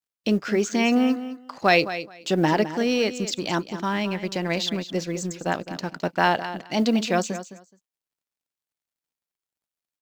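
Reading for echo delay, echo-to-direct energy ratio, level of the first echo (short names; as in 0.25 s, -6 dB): 0.212 s, -12.5 dB, -12.5 dB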